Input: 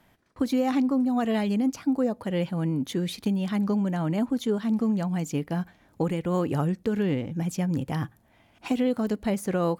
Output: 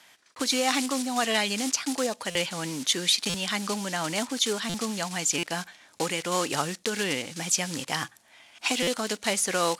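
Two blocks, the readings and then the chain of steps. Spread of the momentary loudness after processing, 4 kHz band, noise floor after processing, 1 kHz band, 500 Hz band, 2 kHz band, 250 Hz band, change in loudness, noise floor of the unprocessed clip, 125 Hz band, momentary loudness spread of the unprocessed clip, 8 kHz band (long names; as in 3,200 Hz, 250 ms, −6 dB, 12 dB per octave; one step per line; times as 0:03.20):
6 LU, +15.0 dB, −59 dBFS, +3.5 dB, −1.5 dB, +10.0 dB, −8.0 dB, 0.0 dB, −62 dBFS, −10.5 dB, 7 LU, +17.5 dB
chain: one scale factor per block 5 bits
meter weighting curve ITU-R 468
buffer that repeats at 0:02.30/0:03.29/0:04.69/0:05.38/0:08.82, samples 256, times 8
level +4.5 dB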